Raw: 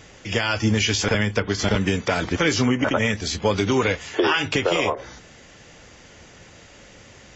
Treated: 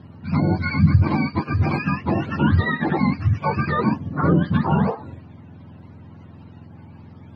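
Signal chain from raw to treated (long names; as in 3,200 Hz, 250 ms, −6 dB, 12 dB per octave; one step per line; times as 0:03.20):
frequency axis turned over on the octave scale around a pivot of 690 Hz
high-frequency loss of the air 390 metres
level +2.5 dB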